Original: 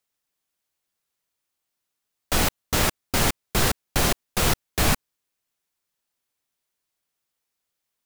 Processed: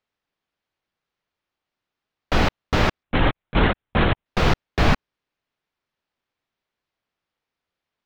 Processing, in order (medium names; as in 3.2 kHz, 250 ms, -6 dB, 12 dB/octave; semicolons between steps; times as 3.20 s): distance through air 240 m; 3.03–4.26 s: LPC vocoder at 8 kHz whisper; trim +5 dB